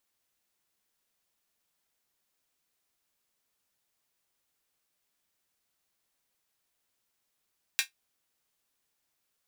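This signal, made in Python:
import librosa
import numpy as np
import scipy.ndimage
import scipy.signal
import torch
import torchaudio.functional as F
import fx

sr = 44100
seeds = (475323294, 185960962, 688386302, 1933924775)

y = fx.drum_hat(sr, length_s=0.24, from_hz=2000.0, decay_s=0.13)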